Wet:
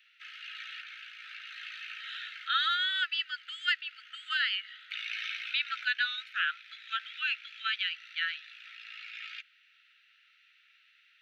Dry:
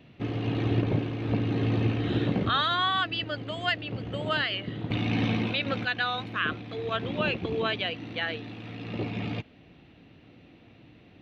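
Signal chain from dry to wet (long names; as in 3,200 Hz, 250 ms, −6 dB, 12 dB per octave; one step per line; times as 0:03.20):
Chebyshev high-pass filter 1,300 Hz, order 10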